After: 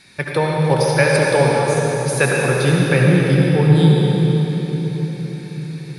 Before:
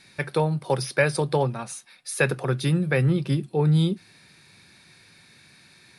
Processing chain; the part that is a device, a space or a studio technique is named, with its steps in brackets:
cathedral (convolution reverb RT60 4.7 s, pre-delay 62 ms, DRR −3 dB)
level +4.5 dB

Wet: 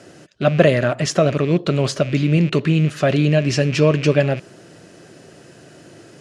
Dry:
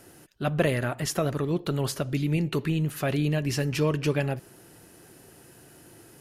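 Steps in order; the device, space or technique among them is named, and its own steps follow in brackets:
car door speaker with a rattle (loose part that buzzes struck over −37 dBFS, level −33 dBFS; loudspeaker in its box 100–7,300 Hz, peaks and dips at 170 Hz +3 dB, 600 Hz +7 dB, 870 Hz −6 dB)
level +8.5 dB

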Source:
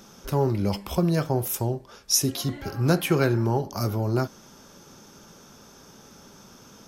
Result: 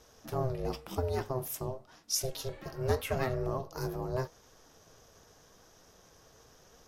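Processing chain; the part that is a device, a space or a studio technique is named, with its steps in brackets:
alien voice (ring modulation 260 Hz; flanger 0.87 Hz, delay 2.2 ms, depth 7.7 ms, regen +74%)
level −2.5 dB

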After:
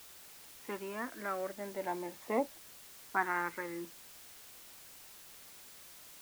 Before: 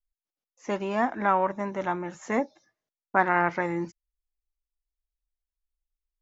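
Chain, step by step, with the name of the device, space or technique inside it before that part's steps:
shortwave radio (band-pass filter 290–2,800 Hz; amplitude tremolo 0.41 Hz, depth 49%; auto-filter notch saw up 0.37 Hz 430–2,000 Hz; white noise bed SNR 13 dB)
level −3.5 dB

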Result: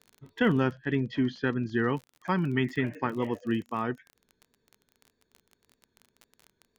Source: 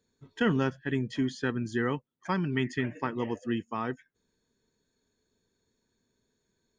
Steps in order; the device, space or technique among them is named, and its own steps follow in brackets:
lo-fi chain (low-pass filter 3,800 Hz 12 dB per octave; tape wow and flutter; surface crackle 28 per second −39 dBFS)
0:00.72–0:01.93: low-pass filter 5,900 Hz 24 dB per octave
level +2 dB

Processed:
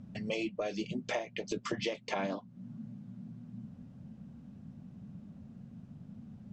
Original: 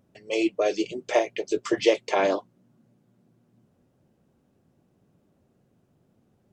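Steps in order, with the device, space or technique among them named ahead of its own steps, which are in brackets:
jukebox (low-pass filter 6,000 Hz 12 dB per octave; low shelf with overshoot 280 Hz +8.5 dB, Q 3; downward compressor 6 to 1, threshold −39 dBFS, peak gain reduction 20 dB)
level +5.5 dB

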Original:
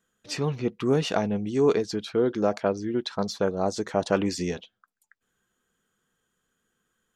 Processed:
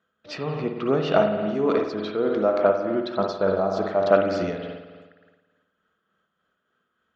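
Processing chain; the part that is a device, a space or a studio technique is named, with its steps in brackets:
combo amplifier with spring reverb and tremolo (spring reverb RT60 1.4 s, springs 52 ms, chirp 40 ms, DRR 2 dB; amplitude tremolo 3.4 Hz, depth 38%; loudspeaker in its box 77–4,600 Hz, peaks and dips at 87 Hz +4 dB, 120 Hz −7 dB, 620 Hz +9 dB, 1,300 Hz +8 dB)

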